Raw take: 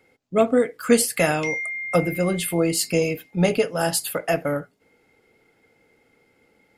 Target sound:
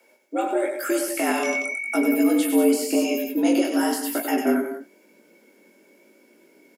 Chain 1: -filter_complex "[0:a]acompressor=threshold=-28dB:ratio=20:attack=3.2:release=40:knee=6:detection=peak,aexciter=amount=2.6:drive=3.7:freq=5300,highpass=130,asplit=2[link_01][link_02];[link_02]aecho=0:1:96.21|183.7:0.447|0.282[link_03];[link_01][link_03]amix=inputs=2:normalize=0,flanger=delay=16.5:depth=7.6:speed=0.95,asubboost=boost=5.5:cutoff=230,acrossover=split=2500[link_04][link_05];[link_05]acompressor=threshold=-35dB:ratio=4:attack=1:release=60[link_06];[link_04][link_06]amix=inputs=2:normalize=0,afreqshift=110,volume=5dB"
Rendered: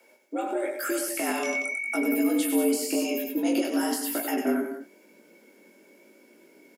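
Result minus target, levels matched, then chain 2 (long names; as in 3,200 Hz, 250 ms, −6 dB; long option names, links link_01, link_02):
downward compressor: peak gain reduction +6 dB
-filter_complex "[0:a]acompressor=threshold=-21.5dB:ratio=20:attack=3.2:release=40:knee=6:detection=peak,aexciter=amount=2.6:drive=3.7:freq=5300,highpass=130,asplit=2[link_01][link_02];[link_02]aecho=0:1:96.21|183.7:0.447|0.282[link_03];[link_01][link_03]amix=inputs=2:normalize=0,flanger=delay=16.5:depth=7.6:speed=0.95,asubboost=boost=5.5:cutoff=230,acrossover=split=2500[link_04][link_05];[link_05]acompressor=threshold=-35dB:ratio=4:attack=1:release=60[link_06];[link_04][link_06]amix=inputs=2:normalize=0,afreqshift=110,volume=5dB"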